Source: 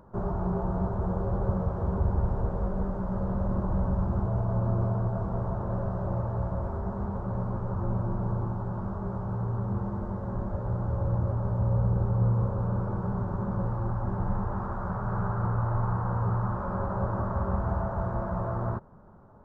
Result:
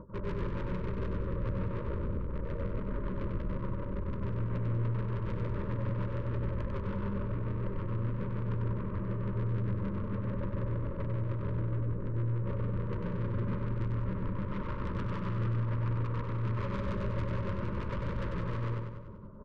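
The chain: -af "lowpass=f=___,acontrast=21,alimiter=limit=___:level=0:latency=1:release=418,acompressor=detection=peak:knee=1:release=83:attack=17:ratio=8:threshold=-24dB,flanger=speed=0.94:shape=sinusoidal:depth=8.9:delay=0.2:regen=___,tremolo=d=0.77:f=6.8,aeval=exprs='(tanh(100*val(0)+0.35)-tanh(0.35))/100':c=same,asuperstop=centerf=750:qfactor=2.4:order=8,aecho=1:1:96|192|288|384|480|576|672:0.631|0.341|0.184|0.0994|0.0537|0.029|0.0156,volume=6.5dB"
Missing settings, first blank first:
1000, -14dB, -21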